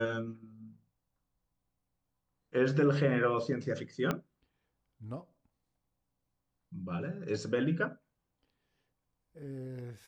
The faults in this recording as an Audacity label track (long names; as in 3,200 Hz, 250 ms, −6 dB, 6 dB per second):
4.110000	4.110000	click −17 dBFS